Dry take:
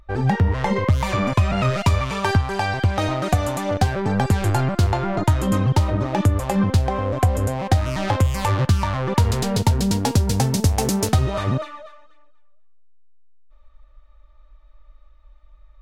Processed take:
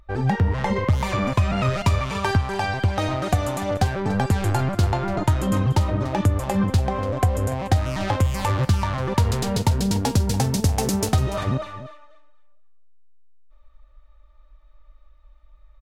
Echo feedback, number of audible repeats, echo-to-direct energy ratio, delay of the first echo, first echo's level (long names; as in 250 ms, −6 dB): repeats not evenly spaced, 1, −15.5 dB, 290 ms, −15.5 dB